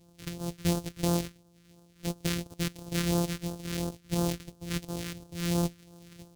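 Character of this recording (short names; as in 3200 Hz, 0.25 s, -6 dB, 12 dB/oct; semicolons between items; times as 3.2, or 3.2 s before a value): a buzz of ramps at a fixed pitch in blocks of 256 samples; phasing stages 2, 2.9 Hz, lowest notch 730–2000 Hz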